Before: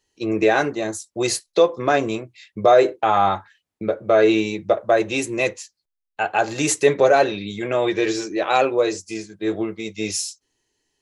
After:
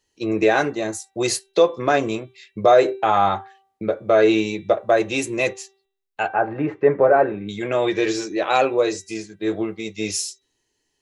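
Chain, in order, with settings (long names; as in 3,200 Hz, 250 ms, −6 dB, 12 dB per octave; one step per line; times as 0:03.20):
0:06.28–0:07.49: low-pass filter 1,700 Hz 24 dB per octave
hum removal 388.9 Hz, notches 10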